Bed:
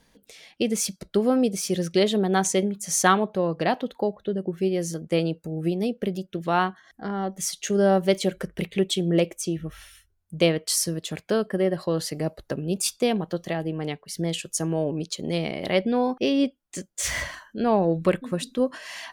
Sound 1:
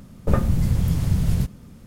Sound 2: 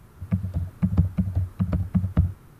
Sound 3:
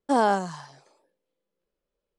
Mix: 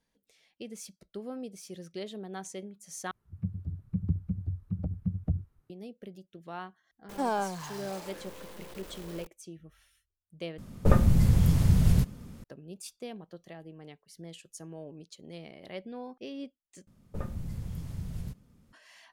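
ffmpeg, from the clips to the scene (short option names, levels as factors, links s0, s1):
-filter_complex "[1:a]asplit=2[s0][s1];[0:a]volume=0.119[s2];[2:a]afwtdn=0.0316[s3];[3:a]aeval=exprs='val(0)+0.5*0.0316*sgn(val(0))':c=same[s4];[s2]asplit=4[s5][s6][s7][s8];[s5]atrim=end=3.114[s9];[s3]atrim=end=2.59,asetpts=PTS-STARTPTS,volume=0.355[s10];[s6]atrim=start=5.696:end=10.584[s11];[s0]atrim=end=1.86,asetpts=PTS-STARTPTS,volume=0.841[s12];[s7]atrim=start=12.436:end=16.874[s13];[s1]atrim=end=1.86,asetpts=PTS-STARTPTS,volume=0.141[s14];[s8]atrim=start=18.726[s15];[s4]atrim=end=2.18,asetpts=PTS-STARTPTS,volume=0.335,afade=t=in:d=0.004:c=hsin,afade=t=out:st=2.176:d=0.004:c=hsin,adelay=7090[s16];[s9][s10]acrossfade=d=0.004:c1=hsin:c2=hsin[s17];[s17][s11]acrossfade=d=0.004:c1=hsin:c2=hsin[s18];[s18][s12]acrossfade=d=0.004:c1=hsin:c2=hsin[s19];[s19][s13]acrossfade=d=0.004:c1=hsin:c2=hsin[s20];[s20][s14]acrossfade=d=0.004:c1=hsin:c2=hsin[s21];[s21][s15]acrossfade=d=0.004:c1=hsin:c2=hsin[s22];[s22][s16]amix=inputs=2:normalize=0"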